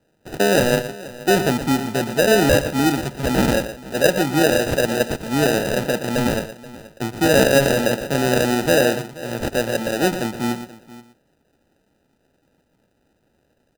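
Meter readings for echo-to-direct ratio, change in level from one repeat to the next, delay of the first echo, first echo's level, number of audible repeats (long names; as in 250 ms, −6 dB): −10.0 dB, repeats not evenly spaced, 118 ms, −11.0 dB, 3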